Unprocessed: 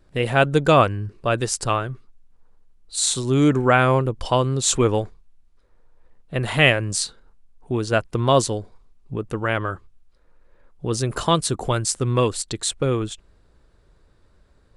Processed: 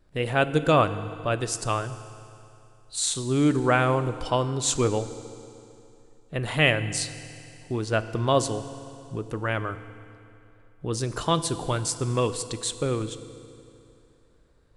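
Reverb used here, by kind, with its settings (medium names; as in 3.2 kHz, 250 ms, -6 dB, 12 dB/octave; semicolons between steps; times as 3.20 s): FDN reverb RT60 2.8 s, high-frequency decay 0.9×, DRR 11.5 dB; trim -5 dB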